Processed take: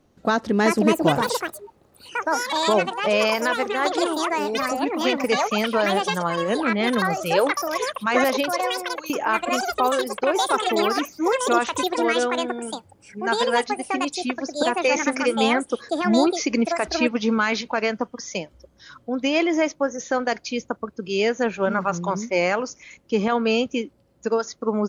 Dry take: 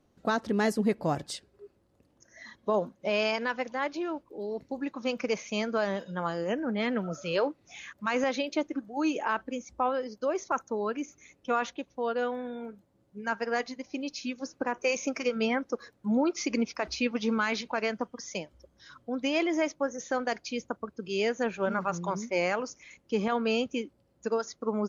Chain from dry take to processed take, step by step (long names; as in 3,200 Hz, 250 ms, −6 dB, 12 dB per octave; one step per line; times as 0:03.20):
0:08.51–0:09.10: first-order pre-emphasis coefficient 0.97
delay with pitch and tempo change per echo 479 ms, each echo +7 semitones, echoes 2
level +7 dB